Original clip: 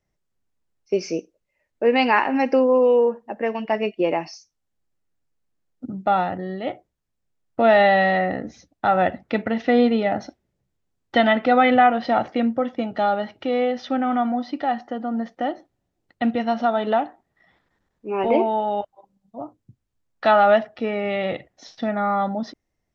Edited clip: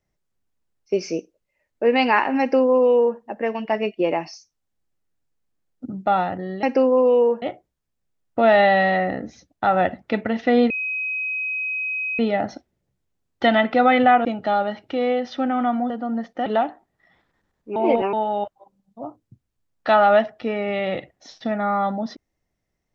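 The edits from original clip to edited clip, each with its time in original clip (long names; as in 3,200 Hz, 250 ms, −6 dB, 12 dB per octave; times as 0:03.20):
0:02.40–0:03.19: duplicate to 0:06.63
0:09.91: insert tone 2,530 Hz −23 dBFS 1.49 s
0:11.97–0:12.77: remove
0:14.42–0:14.92: remove
0:15.48–0:16.83: remove
0:18.13–0:18.50: reverse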